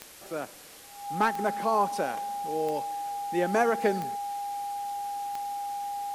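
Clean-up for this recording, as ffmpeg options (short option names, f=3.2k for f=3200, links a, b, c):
-af "adeclick=t=4,bandreject=f=810:w=30,afwtdn=0.004"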